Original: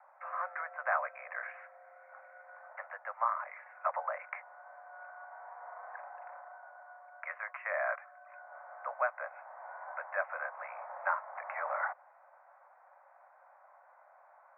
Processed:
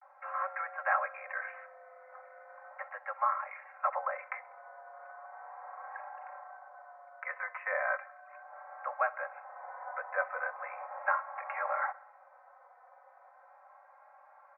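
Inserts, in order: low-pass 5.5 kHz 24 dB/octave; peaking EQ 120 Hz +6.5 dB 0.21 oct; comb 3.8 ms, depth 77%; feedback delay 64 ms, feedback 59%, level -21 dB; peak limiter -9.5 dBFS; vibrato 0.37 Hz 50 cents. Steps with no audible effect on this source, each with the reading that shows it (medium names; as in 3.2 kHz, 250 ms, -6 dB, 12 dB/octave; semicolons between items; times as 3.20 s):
low-pass 5.5 kHz: input has nothing above 2.6 kHz; peaking EQ 120 Hz: input has nothing below 450 Hz; peak limiter -9.5 dBFS: peak at its input -16.0 dBFS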